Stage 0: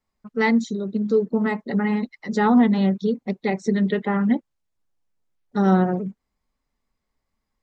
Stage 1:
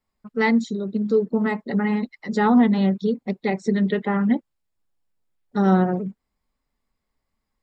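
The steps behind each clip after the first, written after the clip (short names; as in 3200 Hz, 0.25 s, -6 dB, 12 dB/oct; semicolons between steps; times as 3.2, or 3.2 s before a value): notch 6100 Hz, Q 8.5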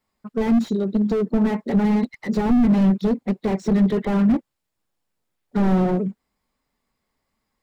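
low shelf 64 Hz -12 dB; slew limiter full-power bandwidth 25 Hz; gain +5.5 dB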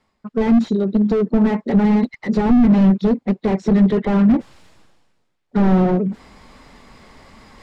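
reverse; upward compressor, threshold -25 dBFS; reverse; air absorption 78 m; gain +4 dB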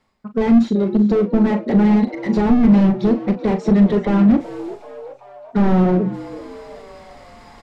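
doubler 39 ms -10 dB; frequency-shifting echo 0.382 s, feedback 54%, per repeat +130 Hz, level -17.5 dB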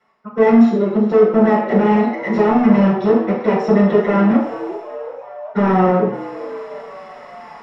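reverb RT60 0.55 s, pre-delay 3 ms, DRR -7.5 dB; gain -9 dB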